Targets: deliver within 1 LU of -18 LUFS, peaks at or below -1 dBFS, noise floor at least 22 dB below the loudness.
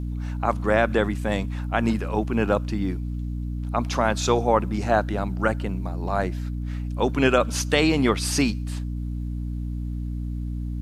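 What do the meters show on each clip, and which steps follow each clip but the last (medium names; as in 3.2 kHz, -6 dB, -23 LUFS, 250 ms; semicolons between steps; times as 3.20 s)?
tick rate 26 per s; hum 60 Hz; highest harmonic 300 Hz; hum level -26 dBFS; loudness -25.0 LUFS; peak level -4.5 dBFS; loudness target -18.0 LUFS
-> de-click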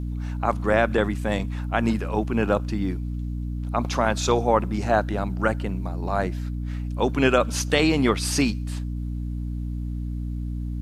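tick rate 0 per s; hum 60 Hz; highest harmonic 300 Hz; hum level -26 dBFS
-> hum notches 60/120/180/240/300 Hz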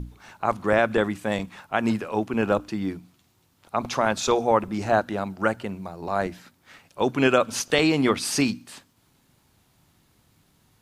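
hum not found; loudness -24.5 LUFS; peak level -4.5 dBFS; loudness target -18.0 LUFS
-> trim +6.5 dB; peak limiter -1 dBFS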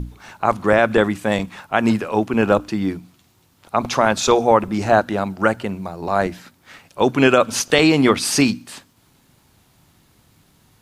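loudness -18.5 LUFS; peak level -1.0 dBFS; noise floor -58 dBFS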